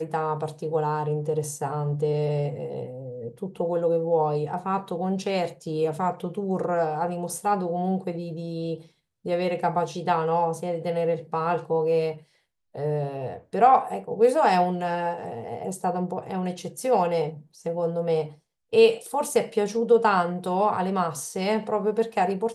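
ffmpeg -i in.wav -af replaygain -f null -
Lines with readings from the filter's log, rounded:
track_gain = +5.6 dB
track_peak = 0.319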